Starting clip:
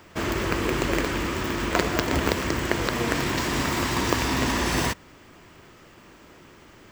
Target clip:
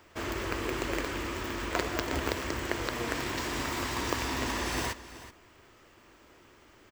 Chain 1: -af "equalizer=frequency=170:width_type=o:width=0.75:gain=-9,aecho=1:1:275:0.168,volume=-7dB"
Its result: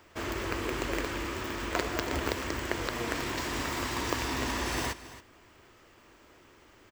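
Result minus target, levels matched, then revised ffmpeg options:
echo 102 ms early
-af "equalizer=frequency=170:width_type=o:width=0.75:gain=-9,aecho=1:1:377:0.168,volume=-7dB"

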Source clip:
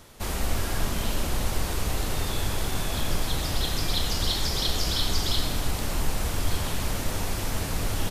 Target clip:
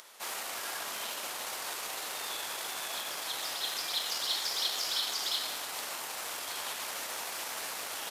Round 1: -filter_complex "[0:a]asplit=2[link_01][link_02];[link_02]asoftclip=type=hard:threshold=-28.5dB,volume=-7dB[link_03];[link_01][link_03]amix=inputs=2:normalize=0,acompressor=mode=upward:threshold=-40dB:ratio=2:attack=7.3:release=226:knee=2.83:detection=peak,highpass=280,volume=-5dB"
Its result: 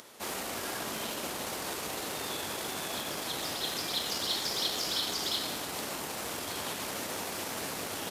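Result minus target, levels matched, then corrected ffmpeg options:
250 Hz band +13.5 dB
-filter_complex "[0:a]asplit=2[link_01][link_02];[link_02]asoftclip=type=hard:threshold=-28.5dB,volume=-7dB[link_03];[link_01][link_03]amix=inputs=2:normalize=0,acompressor=mode=upward:threshold=-40dB:ratio=2:attack=7.3:release=226:knee=2.83:detection=peak,highpass=760,volume=-5dB"

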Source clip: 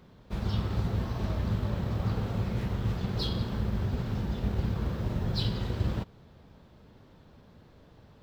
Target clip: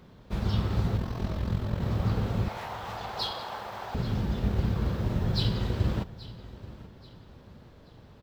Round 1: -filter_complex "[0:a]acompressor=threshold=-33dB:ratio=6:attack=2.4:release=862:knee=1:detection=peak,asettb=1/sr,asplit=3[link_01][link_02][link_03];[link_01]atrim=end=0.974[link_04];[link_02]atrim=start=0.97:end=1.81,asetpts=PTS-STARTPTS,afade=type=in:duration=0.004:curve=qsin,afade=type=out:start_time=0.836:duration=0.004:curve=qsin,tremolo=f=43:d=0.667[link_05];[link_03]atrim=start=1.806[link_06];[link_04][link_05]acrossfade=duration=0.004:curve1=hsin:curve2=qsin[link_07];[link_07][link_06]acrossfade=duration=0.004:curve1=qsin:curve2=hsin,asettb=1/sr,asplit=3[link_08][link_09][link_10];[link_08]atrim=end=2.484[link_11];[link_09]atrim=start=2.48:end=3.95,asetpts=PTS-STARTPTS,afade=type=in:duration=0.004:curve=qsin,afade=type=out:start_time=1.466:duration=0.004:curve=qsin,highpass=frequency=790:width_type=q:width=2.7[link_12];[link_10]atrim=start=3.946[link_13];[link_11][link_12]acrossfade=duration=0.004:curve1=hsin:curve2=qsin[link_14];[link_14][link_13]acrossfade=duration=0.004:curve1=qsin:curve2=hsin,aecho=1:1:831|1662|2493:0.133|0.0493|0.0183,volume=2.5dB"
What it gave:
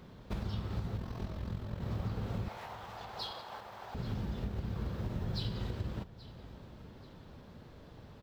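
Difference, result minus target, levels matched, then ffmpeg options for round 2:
downward compressor: peak gain reduction +13 dB
-filter_complex "[0:a]asettb=1/sr,asplit=3[link_01][link_02][link_03];[link_01]atrim=end=0.974[link_04];[link_02]atrim=start=0.97:end=1.81,asetpts=PTS-STARTPTS,afade=type=in:duration=0.004:curve=qsin,afade=type=out:start_time=0.836:duration=0.004:curve=qsin,tremolo=f=43:d=0.667[link_05];[link_03]atrim=start=1.806[link_06];[link_04][link_05]acrossfade=duration=0.004:curve1=hsin:curve2=qsin[link_07];[link_07][link_06]acrossfade=duration=0.004:curve1=qsin:curve2=hsin,asettb=1/sr,asplit=3[link_08][link_09][link_10];[link_08]atrim=end=2.484[link_11];[link_09]atrim=start=2.48:end=3.95,asetpts=PTS-STARTPTS,afade=type=in:duration=0.004:curve=qsin,afade=type=out:start_time=1.466:duration=0.004:curve=qsin,highpass=frequency=790:width_type=q:width=2.7[link_12];[link_10]atrim=start=3.946[link_13];[link_11][link_12]acrossfade=duration=0.004:curve1=hsin:curve2=qsin[link_14];[link_14][link_13]acrossfade=duration=0.004:curve1=qsin:curve2=hsin,aecho=1:1:831|1662|2493:0.133|0.0493|0.0183,volume=2.5dB"

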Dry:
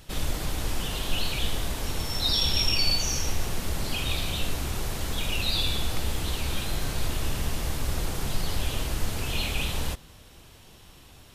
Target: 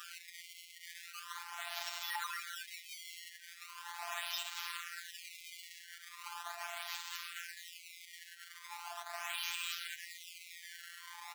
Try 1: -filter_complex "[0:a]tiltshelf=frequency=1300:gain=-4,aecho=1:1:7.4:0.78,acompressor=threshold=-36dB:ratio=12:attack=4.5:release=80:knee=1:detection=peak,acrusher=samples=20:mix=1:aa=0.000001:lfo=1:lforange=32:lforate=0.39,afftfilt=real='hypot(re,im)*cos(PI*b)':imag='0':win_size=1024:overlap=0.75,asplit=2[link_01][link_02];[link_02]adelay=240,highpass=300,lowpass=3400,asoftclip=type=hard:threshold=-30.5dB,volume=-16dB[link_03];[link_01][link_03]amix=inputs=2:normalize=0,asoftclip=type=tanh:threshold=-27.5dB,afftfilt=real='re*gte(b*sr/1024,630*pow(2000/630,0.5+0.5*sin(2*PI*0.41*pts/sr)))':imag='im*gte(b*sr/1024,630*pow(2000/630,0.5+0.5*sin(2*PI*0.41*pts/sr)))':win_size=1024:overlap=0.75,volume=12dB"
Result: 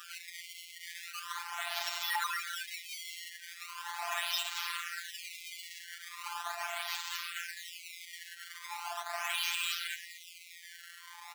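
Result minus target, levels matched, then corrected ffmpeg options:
downward compressor: peak gain reduction −7.5 dB
-filter_complex "[0:a]tiltshelf=frequency=1300:gain=-4,aecho=1:1:7.4:0.78,acompressor=threshold=-44dB:ratio=12:attack=4.5:release=80:knee=1:detection=peak,acrusher=samples=20:mix=1:aa=0.000001:lfo=1:lforange=32:lforate=0.39,afftfilt=real='hypot(re,im)*cos(PI*b)':imag='0':win_size=1024:overlap=0.75,asplit=2[link_01][link_02];[link_02]adelay=240,highpass=300,lowpass=3400,asoftclip=type=hard:threshold=-30.5dB,volume=-16dB[link_03];[link_01][link_03]amix=inputs=2:normalize=0,asoftclip=type=tanh:threshold=-27.5dB,afftfilt=real='re*gte(b*sr/1024,630*pow(2000/630,0.5+0.5*sin(2*PI*0.41*pts/sr)))':imag='im*gte(b*sr/1024,630*pow(2000/630,0.5+0.5*sin(2*PI*0.41*pts/sr)))':win_size=1024:overlap=0.75,volume=12dB"

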